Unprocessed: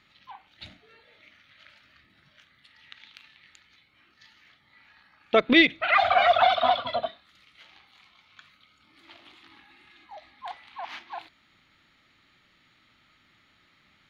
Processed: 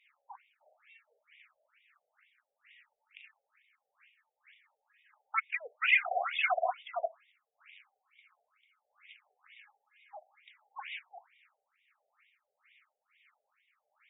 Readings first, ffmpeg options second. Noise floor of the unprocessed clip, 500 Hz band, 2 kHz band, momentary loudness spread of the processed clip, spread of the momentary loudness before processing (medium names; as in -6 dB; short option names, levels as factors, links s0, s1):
-64 dBFS, -13.5 dB, -6.5 dB, 18 LU, 21 LU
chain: -filter_complex "[0:a]superequalizer=6b=2.51:12b=2,acrossover=split=410[s0][s1];[s0]aeval=exprs='val(0)*(1-0.7/2+0.7/2*cos(2*PI*1.6*n/s))':c=same[s2];[s1]aeval=exprs='val(0)*(1-0.7/2-0.7/2*cos(2*PI*1.6*n/s))':c=same[s3];[s2][s3]amix=inputs=2:normalize=0,afftfilt=real='re*between(b*sr/1024,570*pow(2700/570,0.5+0.5*sin(2*PI*2.2*pts/sr))/1.41,570*pow(2700/570,0.5+0.5*sin(2*PI*2.2*pts/sr))*1.41)':imag='im*between(b*sr/1024,570*pow(2700/570,0.5+0.5*sin(2*PI*2.2*pts/sr))/1.41,570*pow(2700/570,0.5+0.5*sin(2*PI*2.2*pts/sr))*1.41)':win_size=1024:overlap=0.75,volume=0.794"